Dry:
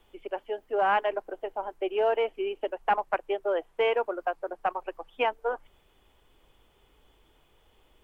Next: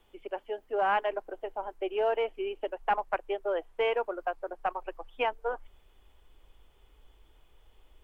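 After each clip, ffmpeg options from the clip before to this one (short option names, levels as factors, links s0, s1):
-af "asubboost=boost=3:cutoff=76,volume=0.75"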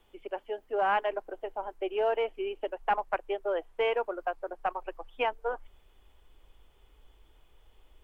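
-af anull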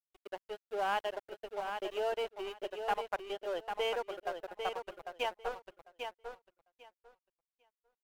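-filter_complex "[0:a]aexciter=amount=2.7:drive=8.8:freq=3300,aeval=exprs='sgn(val(0))*max(abs(val(0))-0.00944,0)':c=same,asplit=2[s0][s1];[s1]aecho=0:1:798|1596|2394:0.473|0.0757|0.0121[s2];[s0][s2]amix=inputs=2:normalize=0,volume=0.562"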